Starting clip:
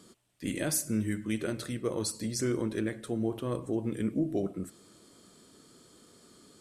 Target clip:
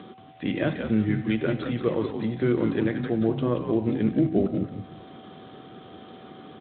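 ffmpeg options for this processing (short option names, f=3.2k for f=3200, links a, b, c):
-filter_complex "[0:a]bandreject=f=254.4:t=h:w=4,bandreject=f=508.8:t=h:w=4,bandreject=f=763.2:t=h:w=4,bandreject=f=1.0176k:t=h:w=4,bandreject=f=1.272k:t=h:w=4,bandreject=f=1.5264k:t=h:w=4,bandreject=f=1.7808k:t=h:w=4,bandreject=f=2.0352k:t=h:w=4,bandreject=f=2.2896k:t=h:w=4,asplit=2[a][b];[b]acompressor=mode=upward:threshold=-36dB:ratio=2.5,volume=0dB[c];[a][c]amix=inputs=2:normalize=0,aeval=exprs='val(0)+0.00282*sin(2*PI*760*n/s)':c=same,acrossover=split=670|1800[d][e][f];[d]crystalizer=i=9:c=0[g];[g][e][f]amix=inputs=3:normalize=0,asplit=5[h][i][j][k][l];[i]adelay=179,afreqshift=-81,volume=-6dB[m];[j]adelay=358,afreqshift=-162,volume=-15.4dB[n];[k]adelay=537,afreqshift=-243,volume=-24.7dB[o];[l]adelay=716,afreqshift=-324,volume=-34.1dB[p];[h][m][n][o][p]amix=inputs=5:normalize=0" -ar 8000 -c:a libspeex -b:a 24k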